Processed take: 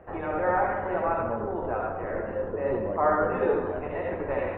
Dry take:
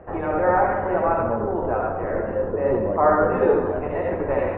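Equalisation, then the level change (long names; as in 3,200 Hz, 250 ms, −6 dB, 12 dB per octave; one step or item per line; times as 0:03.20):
high-shelf EQ 2,100 Hz +9 dB
−7.0 dB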